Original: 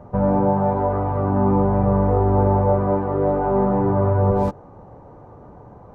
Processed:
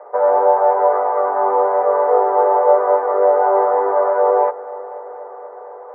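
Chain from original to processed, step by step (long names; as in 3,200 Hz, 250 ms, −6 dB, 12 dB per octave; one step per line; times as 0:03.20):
Chebyshev band-pass filter 440–2,100 Hz, order 4
echo machine with several playback heads 242 ms, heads first and second, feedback 73%, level −22.5 dB
level +8.5 dB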